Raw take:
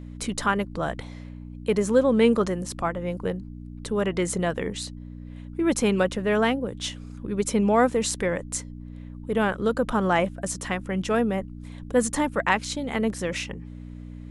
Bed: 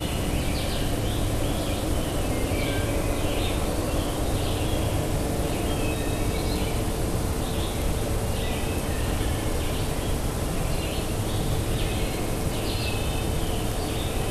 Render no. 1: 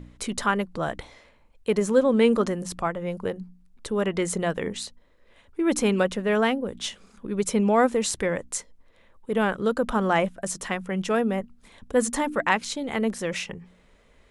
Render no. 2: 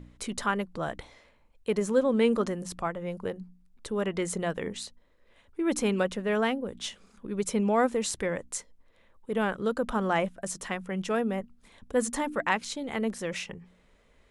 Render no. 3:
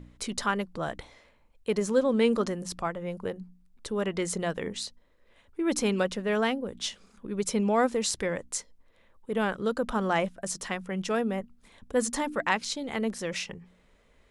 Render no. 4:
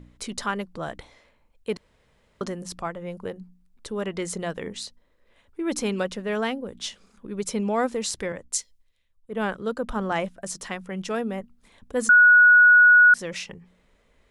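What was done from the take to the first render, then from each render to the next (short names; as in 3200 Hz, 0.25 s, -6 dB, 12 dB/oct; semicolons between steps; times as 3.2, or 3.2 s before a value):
de-hum 60 Hz, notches 5
gain -4.5 dB
dynamic EQ 4900 Hz, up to +6 dB, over -51 dBFS, Q 1.5
1.77–2.41 room tone; 8.32–10.12 three-band expander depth 70%; 12.09–13.14 bleep 1460 Hz -10 dBFS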